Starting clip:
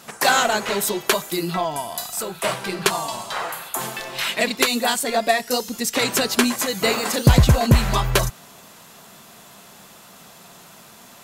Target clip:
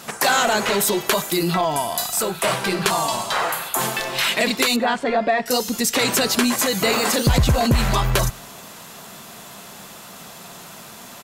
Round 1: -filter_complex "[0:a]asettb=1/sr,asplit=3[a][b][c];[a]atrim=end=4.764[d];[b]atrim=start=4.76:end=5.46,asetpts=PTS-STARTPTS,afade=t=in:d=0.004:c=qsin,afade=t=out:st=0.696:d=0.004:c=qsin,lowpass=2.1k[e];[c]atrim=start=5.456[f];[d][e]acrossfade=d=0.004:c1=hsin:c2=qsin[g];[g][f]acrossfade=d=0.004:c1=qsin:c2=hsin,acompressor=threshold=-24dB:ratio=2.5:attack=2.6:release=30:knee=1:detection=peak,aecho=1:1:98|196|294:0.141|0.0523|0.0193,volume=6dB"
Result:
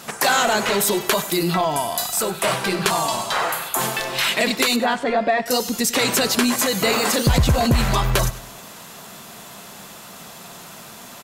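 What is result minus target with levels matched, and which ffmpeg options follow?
echo-to-direct +11 dB
-filter_complex "[0:a]asettb=1/sr,asplit=3[a][b][c];[a]atrim=end=4.764[d];[b]atrim=start=4.76:end=5.46,asetpts=PTS-STARTPTS,afade=t=in:d=0.004:c=qsin,afade=t=out:st=0.696:d=0.004:c=qsin,lowpass=2.1k[e];[c]atrim=start=5.456[f];[d][e]acrossfade=d=0.004:c1=hsin:c2=qsin[g];[g][f]acrossfade=d=0.004:c1=qsin:c2=hsin,acompressor=threshold=-24dB:ratio=2.5:attack=2.6:release=30:knee=1:detection=peak,aecho=1:1:98|196:0.0398|0.0147,volume=6dB"

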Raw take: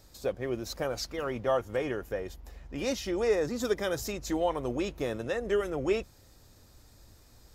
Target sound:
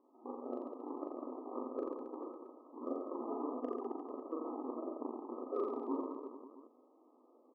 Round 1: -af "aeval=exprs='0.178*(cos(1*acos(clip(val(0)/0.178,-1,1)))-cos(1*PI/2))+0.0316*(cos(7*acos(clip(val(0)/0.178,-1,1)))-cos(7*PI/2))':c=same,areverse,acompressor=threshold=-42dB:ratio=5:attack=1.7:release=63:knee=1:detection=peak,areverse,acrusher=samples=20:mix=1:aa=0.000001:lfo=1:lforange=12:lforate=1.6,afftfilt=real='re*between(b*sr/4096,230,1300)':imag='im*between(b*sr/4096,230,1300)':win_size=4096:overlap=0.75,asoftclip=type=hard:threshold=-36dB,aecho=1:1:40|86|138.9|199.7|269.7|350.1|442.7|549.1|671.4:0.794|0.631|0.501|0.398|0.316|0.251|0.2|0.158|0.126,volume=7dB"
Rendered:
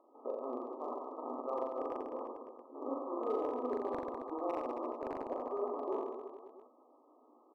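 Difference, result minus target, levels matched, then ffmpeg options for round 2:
decimation with a swept rate: distortion -19 dB
-af "aeval=exprs='0.178*(cos(1*acos(clip(val(0)/0.178,-1,1)))-cos(1*PI/2))+0.0316*(cos(7*acos(clip(val(0)/0.178,-1,1)))-cos(7*PI/2))':c=same,areverse,acompressor=threshold=-42dB:ratio=5:attack=1.7:release=63:knee=1:detection=peak,areverse,acrusher=samples=62:mix=1:aa=0.000001:lfo=1:lforange=37.2:lforate=1.6,afftfilt=real='re*between(b*sr/4096,230,1300)':imag='im*between(b*sr/4096,230,1300)':win_size=4096:overlap=0.75,asoftclip=type=hard:threshold=-36dB,aecho=1:1:40|86|138.9|199.7|269.7|350.1|442.7|549.1|671.4:0.794|0.631|0.501|0.398|0.316|0.251|0.2|0.158|0.126,volume=7dB"

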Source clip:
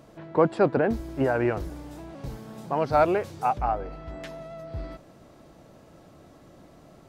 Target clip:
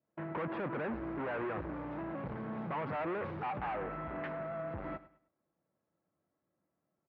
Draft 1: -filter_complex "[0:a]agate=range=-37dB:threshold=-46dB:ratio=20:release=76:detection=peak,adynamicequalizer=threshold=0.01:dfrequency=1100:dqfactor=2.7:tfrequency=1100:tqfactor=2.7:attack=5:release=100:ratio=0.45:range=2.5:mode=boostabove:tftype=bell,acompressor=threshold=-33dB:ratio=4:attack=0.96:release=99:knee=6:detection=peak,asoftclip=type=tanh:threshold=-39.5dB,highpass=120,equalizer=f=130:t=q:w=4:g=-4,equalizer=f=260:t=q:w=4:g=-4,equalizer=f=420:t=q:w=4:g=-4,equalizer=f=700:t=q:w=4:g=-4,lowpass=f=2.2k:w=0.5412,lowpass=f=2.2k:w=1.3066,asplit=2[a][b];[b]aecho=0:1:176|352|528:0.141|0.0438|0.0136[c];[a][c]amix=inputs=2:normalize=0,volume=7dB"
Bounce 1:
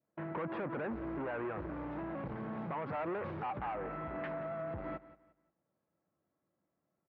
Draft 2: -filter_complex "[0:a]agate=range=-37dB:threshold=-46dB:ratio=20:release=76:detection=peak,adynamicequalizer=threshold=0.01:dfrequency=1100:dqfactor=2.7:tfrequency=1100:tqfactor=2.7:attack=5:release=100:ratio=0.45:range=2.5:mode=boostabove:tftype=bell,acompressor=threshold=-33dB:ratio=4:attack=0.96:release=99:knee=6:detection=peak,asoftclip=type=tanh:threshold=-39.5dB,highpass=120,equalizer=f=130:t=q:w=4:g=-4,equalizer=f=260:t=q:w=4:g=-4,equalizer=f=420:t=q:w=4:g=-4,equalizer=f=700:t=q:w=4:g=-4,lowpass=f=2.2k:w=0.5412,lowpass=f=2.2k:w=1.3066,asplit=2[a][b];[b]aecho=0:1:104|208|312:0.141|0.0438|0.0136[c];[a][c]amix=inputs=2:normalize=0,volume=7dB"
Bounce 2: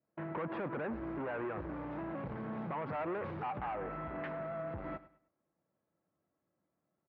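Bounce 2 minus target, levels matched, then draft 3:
compressor: peak gain reduction +7 dB
-filter_complex "[0:a]agate=range=-37dB:threshold=-46dB:ratio=20:release=76:detection=peak,adynamicequalizer=threshold=0.01:dfrequency=1100:dqfactor=2.7:tfrequency=1100:tqfactor=2.7:attack=5:release=100:ratio=0.45:range=2.5:mode=boostabove:tftype=bell,acompressor=threshold=-24dB:ratio=4:attack=0.96:release=99:knee=6:detection=peak,asoftclip=type=tanh:threshold=-39.5dB,highpass=120,equalizer=f=130:t=q:w=4:g=-4,equalizer=f=260:t=q:w=4:g=-4,equalizer=f=420:t=q:w=4:g=-4,equalizer=f=700:t=q:w=4:g=-4,lowpass=f=2.2k:w=0.5412,lowpass=f=2.2k:w=1.3066,asplit=2[a][b];[b]aecho=0:1:104|208|312:0.141|0.0438|0.0136[c];[a][c]amix=inputs=2:normalize=0,volume=7dB"

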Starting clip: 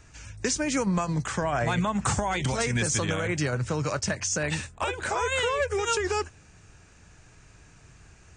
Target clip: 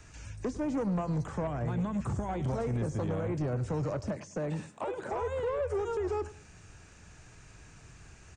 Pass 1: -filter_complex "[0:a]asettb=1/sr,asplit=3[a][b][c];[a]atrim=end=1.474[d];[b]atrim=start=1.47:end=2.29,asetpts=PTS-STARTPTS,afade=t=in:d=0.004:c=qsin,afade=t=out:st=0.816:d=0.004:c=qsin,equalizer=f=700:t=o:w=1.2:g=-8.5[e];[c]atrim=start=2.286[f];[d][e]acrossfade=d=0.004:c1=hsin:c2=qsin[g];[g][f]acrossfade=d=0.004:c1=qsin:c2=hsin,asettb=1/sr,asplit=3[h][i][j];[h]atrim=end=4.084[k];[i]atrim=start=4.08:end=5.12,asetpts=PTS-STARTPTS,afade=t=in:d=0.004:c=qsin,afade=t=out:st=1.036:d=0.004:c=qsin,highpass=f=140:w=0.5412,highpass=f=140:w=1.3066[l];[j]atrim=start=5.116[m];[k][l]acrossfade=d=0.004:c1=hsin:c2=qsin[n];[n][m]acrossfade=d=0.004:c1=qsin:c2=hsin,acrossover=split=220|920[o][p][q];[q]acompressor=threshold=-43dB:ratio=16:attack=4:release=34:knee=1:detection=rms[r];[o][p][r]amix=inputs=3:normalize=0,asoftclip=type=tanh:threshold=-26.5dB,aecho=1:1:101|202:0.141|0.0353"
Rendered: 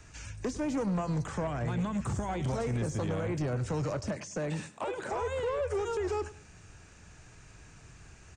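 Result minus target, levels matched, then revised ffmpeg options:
compressor: peak gain reduction -7.5 dB
-filter_complex "[0:a]asettb=1/sr,asplit=3[a][b][c];[a]atrim=end=1.474[d];[b]atrim=start=1.47:end=2.29,asetpts=PTS-STARTPTS,afade=t=in:d=0.004:c=qsin,afade=t=out:st=0.816:d=0.004:c=qsin,equalizer=f=700:t=o:w=1.2:g=-8.5[e];[c]atrim=start=2.286[f];[d][e]acrossfade=d=0.004:c1=hsin:c2=qsin[g];[g][f]acrossfade=d=0.004:c1=qsin:c2=hsin,asettb=1/sr,asplit=3[h][i][j];[h]atrim=end=4.084[k];[i]atrim=start=4.08:end=5.12,asetpts=PTS-STARTPTS,afade=t=in:d=0.004:c=qsin,afade=t=out:st=1.036:d=0.004:c=qsin,highpass=f=140:w=0.5412,highpass=f=140:w=1.3066[l];[j]atrim=start=5.116[m];[k][l]acrossfade=d=0.004:c1=hsin:c2=qsin[n];[n][m]acrossfade=d=0.004:c1=qsin:c2=hsin,acrossover=split=220|920[o][p][q];[q]acompressor=threshold=-51dB:ratio=16:attack=4:release=34:knee=1:detection=rms[r];[o][p][r]amix=inputs=3:normalize=0,asoftclip=type=tanh:threshold=-26.5dB,aecho=1:1:101|202:0.141|0.0353"

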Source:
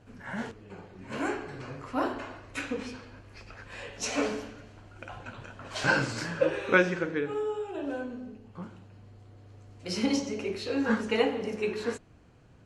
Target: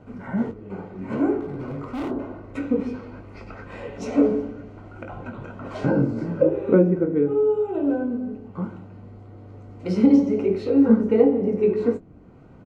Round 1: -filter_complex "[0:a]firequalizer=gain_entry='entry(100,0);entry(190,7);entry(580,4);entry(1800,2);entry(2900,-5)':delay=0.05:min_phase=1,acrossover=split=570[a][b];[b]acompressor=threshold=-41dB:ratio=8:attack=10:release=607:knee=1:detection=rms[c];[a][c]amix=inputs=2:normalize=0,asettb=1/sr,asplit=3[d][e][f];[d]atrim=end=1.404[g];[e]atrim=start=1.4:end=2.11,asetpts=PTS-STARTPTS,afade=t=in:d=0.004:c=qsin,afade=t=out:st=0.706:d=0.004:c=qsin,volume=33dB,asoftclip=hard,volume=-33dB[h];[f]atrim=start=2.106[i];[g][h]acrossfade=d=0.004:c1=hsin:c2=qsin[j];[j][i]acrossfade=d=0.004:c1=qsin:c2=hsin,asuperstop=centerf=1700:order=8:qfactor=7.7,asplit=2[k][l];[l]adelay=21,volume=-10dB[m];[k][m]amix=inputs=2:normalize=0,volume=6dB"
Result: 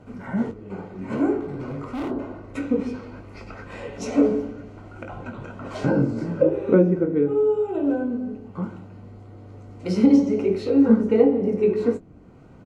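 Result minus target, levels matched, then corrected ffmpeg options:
8000 Hz band +6.0 dB
-filter_complex "[0:a]firequalizer=gain_entry='entry(100,0);entry(190,7);entry(580,4);entry(1800,2);entry(2900,-5)':delay=0.05:min_phase=1,acrossover=split=570[a][b];[b]acompressor=threshold=-41dB:ratio=8:attack=10:release=607:knee=1:detection=rms,highshelf=f=4.8k:g=-9.5[c];[a][c]amix=inputs=2:normalize=0,asettb=1/sr,asplit=3[d][e][f];[d]atrim=end=1.404[g];[e]atrim=start=1.4:end=2.11,asetpts=PTS-STARTPTS,afade=t=in:d=0.004:c=qsin,afade=t=out:st=0.706:d=0.004:c=qsin,volume=33dB,asoftclip=hard,volume=-33dB[h];[f]atrim=start=2.106[i];[g][h]acrossfade=d=0.004:c1=hsin:c2=qsin[j];[j][i]acrossfade=d=0.004:c1=qsin:c2=hsin,asuperstop=centerf=1700:order=8:qfactor=7.7,asplit=2[k][l];[l]adelay=21,volume=-10dB[m];[k][m]amix=inputs=2:normalize=0,volume=6dB"

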